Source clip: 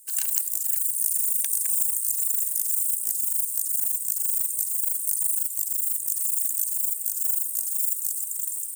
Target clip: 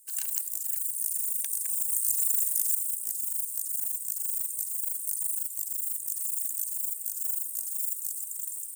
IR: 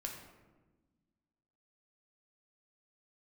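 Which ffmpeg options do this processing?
-filter_complex "[0:a]asettb=1/sr,asplit=3[s0][s1][s2];[s0]atrim=end=1.904[s3];[s1]atrim=start=1.9:end=2.75,asetpts=PTS-STARTPTS,afade=t=in:d=0.004:c=qsin,afade=t=out:st=0.846:d=0.004:c=qsin,acontrast=24[s4];[s2]atrim=start=2.746[s5];[s3][s4]acrossfade=d=0.004:c1=hsin:c2=qsin[s6];[s6][s5]acrossfade=d=0.004:c1=qsin:c2=hsin,volume=0.501"

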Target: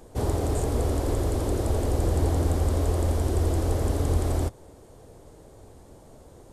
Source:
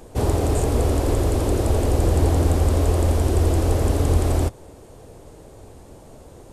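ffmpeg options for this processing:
-af "equalizer=f=2600:w=4.2:g=-4,volume=0.531"

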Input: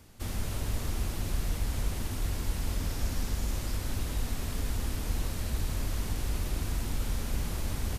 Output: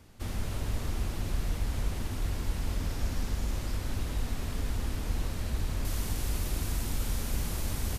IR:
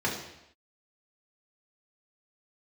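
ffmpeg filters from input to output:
-af "asetnsamples=n=441:p=0,asendcmd='5.85 highshelf g 4.5',highshelf=f=5600:g=-6"

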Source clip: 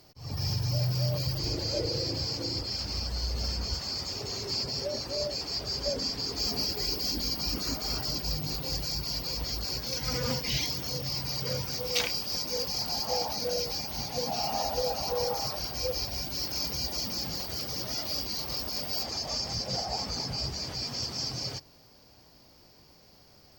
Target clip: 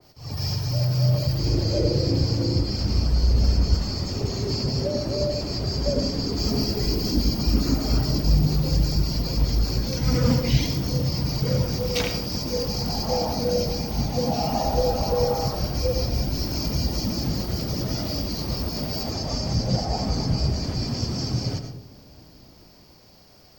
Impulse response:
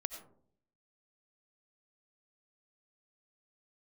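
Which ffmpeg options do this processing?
-filter_complex "[0:a]acrossover=split=350|890|2700[s0][s1][s2][s3];[s0]dynaudnorm=f=180:g=17:m=3.76[s4];[s4][s1][s2][s3]amix=inputs=4:normalize=0[s5];[1:a]atrim=start_sample=2205,asetrate=43659,aresample=44100[s6];[s5][s6]afir=irnorm=-1:irlink=0,adynamicequalizer=threshold=0.00562:dfrequency=2000:dqfactor=0.7:tfrequency=2000:tqfactor=0.7:attack=5:release=100:ratio=0.375:range=2:mode=cutabove:tftype=highshelf,volume=1.78"

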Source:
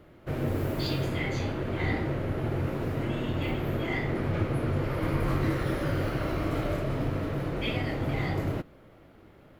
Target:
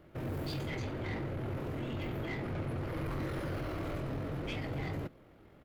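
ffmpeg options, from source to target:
-af "asoftclip=type=tanh:threshold=0.0422,atempo=1.7,volume=0.631"

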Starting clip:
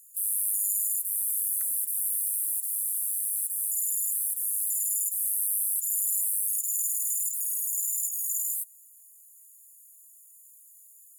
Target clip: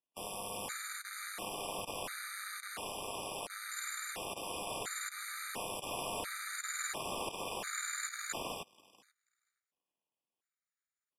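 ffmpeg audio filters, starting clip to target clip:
-filter_complex "[0:a]asplit=2[s0][s1];[s1]aecho=0:1:484|968|1452|1936:0.282|0.0986|0.0345|0.0121[s2];[s0][s2]amix=inputs=2:normalize=0,aeval=exprs='0.178*(cos(1*acos(clip(val(0)/0.178,-1,1)))-cos(1*PI/2))+0.00158*(cos(6*acos(clip(val(0)/0.178,-1,1)))-cos(6*PI/2))+0.0251*(cos(7*acos(clip(val(0)/0.178,-1,1)))-cos(7*PI/2))':c=same,highpass=170,acrossover=split=580[s3][s4];[s4]asoftclip=type=tanh:threshold=0.0531[s5];[s3][s5]amix=inputs=2:normalize=0,lowpass=3200,afftfilt=real='re*gt(sin(2*PI*0.72*pts/sr)*(1-2*mod(floor(b*sr/1024/1200),2)),0)':imag='im*gt(sin(2*PI*0.72*pts/sr)*(1-2*mod(floor(b*sr/1024/1200),2)),0)':win_size=1024:overlap=0.75,volume=4.22"

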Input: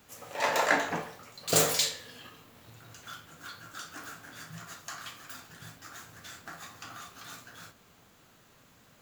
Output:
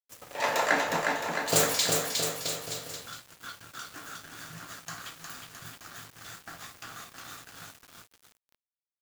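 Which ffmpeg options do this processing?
-af "aecho=1:1:360|666|926.1|1147|1335:0.631|0.398|0.251|0.158|0.1,aeval=exprs='val(0)*gte(abs(val(0)),0.00596)':c=same"

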